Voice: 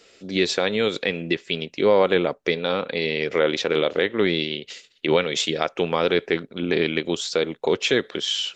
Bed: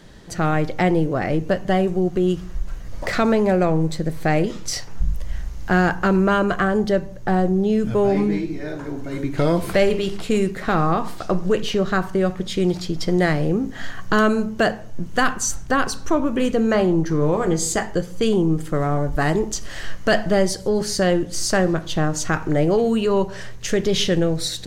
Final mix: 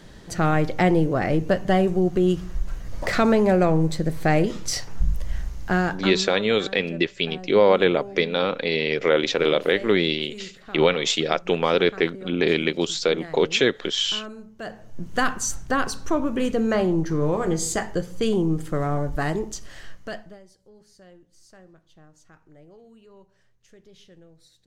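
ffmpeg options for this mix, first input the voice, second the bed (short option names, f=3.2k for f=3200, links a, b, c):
-filter_complex "[0:a]adelay=5700,volume=1dB[a];[1:a]volume=16dB,afade=t=out:st=5.41:d=0.9:silence=0.105925,afade=t=in:st=14.59:d=0.57:silence=0.149624,afade=t=out:st=18.98:d=1.41:silence=0.0375837[b];[a][b]amix=inputs=2:normalize=0"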